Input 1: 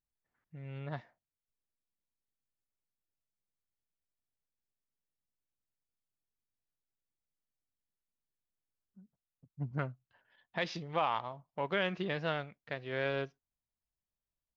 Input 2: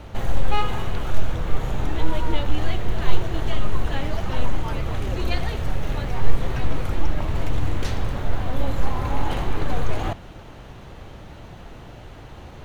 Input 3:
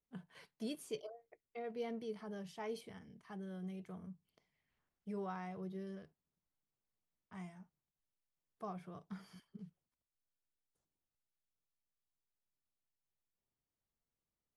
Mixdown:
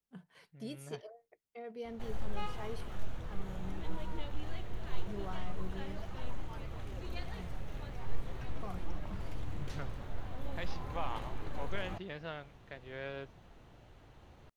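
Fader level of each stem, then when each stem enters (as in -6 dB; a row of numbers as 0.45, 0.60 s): -8.5, -17.0, -1.5 dB; 0.00, 1.85, 0.00 s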